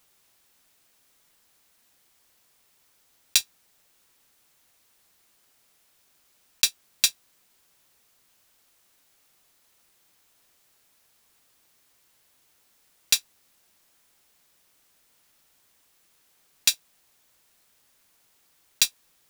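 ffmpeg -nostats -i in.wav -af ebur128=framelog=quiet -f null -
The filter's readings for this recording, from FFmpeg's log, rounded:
Integrated loudness:
  I:         -24.2 LUFS
  Threshold: -43.0 LUFS
Loudness range:
  LRA:         3.0 LU
  Threshold: -53.1 LUFS
  LRA low:   -32.8 LUFS
  LRA high:  -29.8 LUFS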